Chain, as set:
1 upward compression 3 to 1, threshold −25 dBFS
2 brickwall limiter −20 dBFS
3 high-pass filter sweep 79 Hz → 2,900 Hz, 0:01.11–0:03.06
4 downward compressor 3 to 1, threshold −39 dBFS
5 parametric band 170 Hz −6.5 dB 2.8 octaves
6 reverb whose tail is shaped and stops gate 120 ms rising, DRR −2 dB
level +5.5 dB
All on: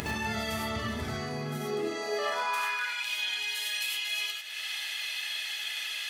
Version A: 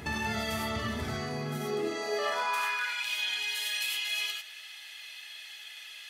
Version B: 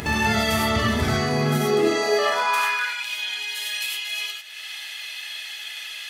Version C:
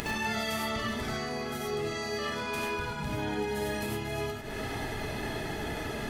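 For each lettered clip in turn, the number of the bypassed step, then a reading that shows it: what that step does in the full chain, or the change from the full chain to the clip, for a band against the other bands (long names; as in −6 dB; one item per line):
1, change in crest factor −2.0 dB
4, average gain reduction 6.0 dB
3, 4 kHz band −8.5 dB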